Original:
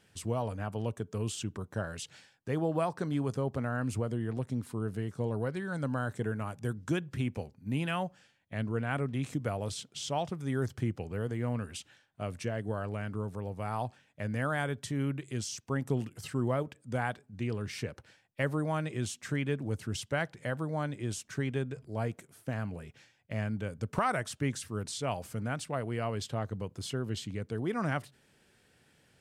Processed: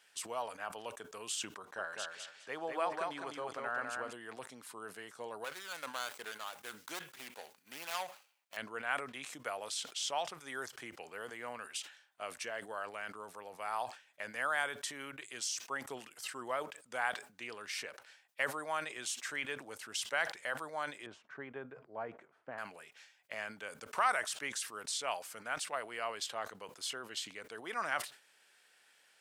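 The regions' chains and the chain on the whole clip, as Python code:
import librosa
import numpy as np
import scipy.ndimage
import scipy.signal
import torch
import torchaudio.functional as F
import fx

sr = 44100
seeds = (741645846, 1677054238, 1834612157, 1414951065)

y = fx.chain(x, sr, fx.high_shelf(hz=7100.0, db=-11.5),
    fx.echo_feedback(ms=204, feedback_pct=22, wet_db=-4), at=(1.58, 4.13))
y = fx.chain(y, sr, fx.median_filter(points=25),
    fx.tilt_eq(slope=3.0), at=(5.44, 8.57))
y = fx.chain(y, sr, fx.lowpass(hz=1200.0, slope=12),
    fx.low_shelf(hz=250.0, db=6.0), at=(21.06, 22.58))
y = scipy.signal.sosfilt(scipy.signal.butter(2, 900.0, 'highpass', fs=sr, output='sos'), y)
y = fx.sustainer(y, sr, db_per_s=140.0)
y = F.gain(torch.from_numpy(y), 2.0).numpy()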